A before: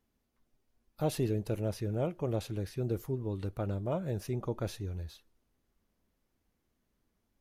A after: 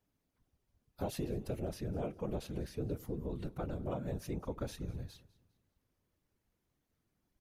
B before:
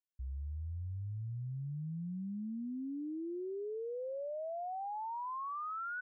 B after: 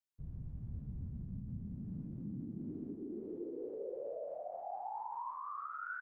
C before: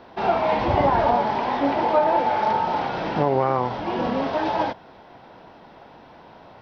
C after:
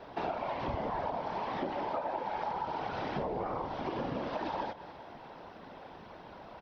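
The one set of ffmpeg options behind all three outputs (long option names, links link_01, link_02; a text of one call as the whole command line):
ffmpeg -i in.wav -af "afftfilt=real='hypot(re,im)*cos(2*PI*random(0))':imag='hypot(re,im)*sin(2*PI*random(1))':win_size=512:overlap=0.75,aecho=1:1:202|404|606:0.0794|0.0286|0.0103,acompressor=threshold=-36dB:ratio=6,volume=3dB" out.wav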